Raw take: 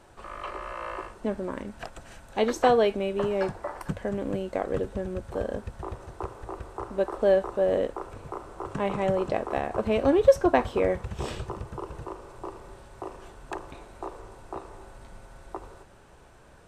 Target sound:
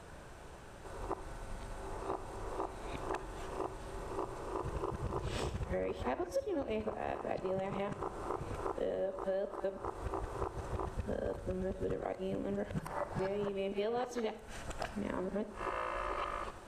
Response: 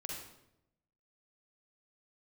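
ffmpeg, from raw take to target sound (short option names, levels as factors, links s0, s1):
-filter_complex "[0:a]areverse,acompressor=threshold=0.0158:ratio=8,asplit=2[s0][s1];[1:a]atrim=start_sample=2205[s2];[s1][s2]afir=irnorm=-1:irlink=0,volume=0.447[s3];[s0][s3]amix=inputs=2:normalize=0"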